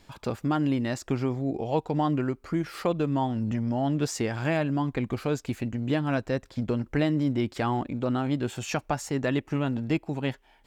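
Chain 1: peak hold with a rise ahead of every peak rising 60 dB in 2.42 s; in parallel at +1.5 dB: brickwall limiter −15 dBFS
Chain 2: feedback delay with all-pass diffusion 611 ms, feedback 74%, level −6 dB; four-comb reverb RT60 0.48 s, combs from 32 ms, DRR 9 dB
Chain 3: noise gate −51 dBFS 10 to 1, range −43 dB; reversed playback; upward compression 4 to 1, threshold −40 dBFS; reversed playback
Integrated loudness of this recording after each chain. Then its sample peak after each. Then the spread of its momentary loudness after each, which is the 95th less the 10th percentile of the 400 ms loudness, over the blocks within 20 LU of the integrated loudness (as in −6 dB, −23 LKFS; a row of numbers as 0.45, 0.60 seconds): −18.5, −26.5, −28.5 LKFS; −3.5, −11.0, −12.0 dBFS; 2, 3, 4 LU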